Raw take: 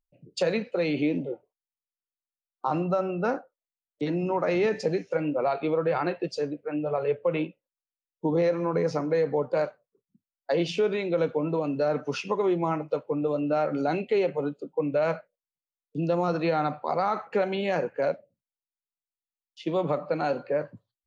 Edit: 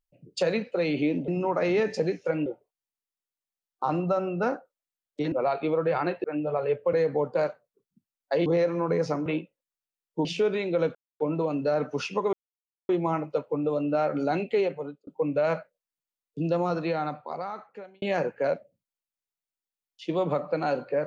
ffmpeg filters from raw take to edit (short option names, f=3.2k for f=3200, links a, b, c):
-filter_complex "[0:a]asplit=13[a][b][c][d][e][f][g][h][i][j][k][l][m];[a]atrim=end=1.282[n];[b]atrim=start=4.138:end=5.322[o];[c]atrim=start=1.278:end=4.142[p];[d]atrim=start=5.318:end=6.242[q];[e]atrim=start=6.628:end=7.322[r];[f]atrim=start=9.108:end=10.642[s];[g]atrim=start=8.308:end=9.112[t];[h]atrim=start=7.318:end=8.312[u];[i]atrim=start=10.638:end=11.34,asetpts=PTS-STARTPTS,afade=t=out:st=0.698:d=0.004:c=hsin,apad=pad_dur=0.25[v];[j]atrim=start=11.34:end=12.47,asetpts=PTS-STARTPTS,afade=t=in:d=0.004:c=hsin,afade=t=out:st=1.126:d=0.004:c=hsin,apad=pad_dur=0.56[w];[k]atrim=start=12.47:end=14.65,asetpts=PTS-STARTPTS,afade=t=in:d=0.004:c=hsin,afade=t=out:st=1.68:d=0.5[x];[l]atrim=start=14.65:end=17.6,asetpts=PTS-STARTPTS,afade=t=in:d=0.004:c=hsin,afade=t=out:st=1.42:d=1.53[y];[m]atrim=start=17.6,asetpts=PTS-STARTPTS,afade=t=in:d=0.004:c=hsin[z];[n][o]acrossfade=d=0.004:c1=hsin:c2=hsin[aa];[aa][p]acrossfade=d=0.004:c1=hsin:c2=hsin[ab];[ab][q]acrossfade=d=0.004:c1=hsin:c2=hsin[ac];[ac][r]acrossfade=d=0.004:c1=hsin:c2=hsin[ad];[ad][s]acrossfade=d=0.004:c1=hsin:c2=hsin[ae];[ae][t]acrossfade=d=0.004:c1=hsin:c2=hsin[af];[af][u]acrossfade=d=0.004:c1=hsin:c2=hsin[ag];[v][w][x][y][z]concat=n=5:v=0:a=1[ah];[ag][ah]acrossfade=d=0.004:c1=hsin:c2=hsin"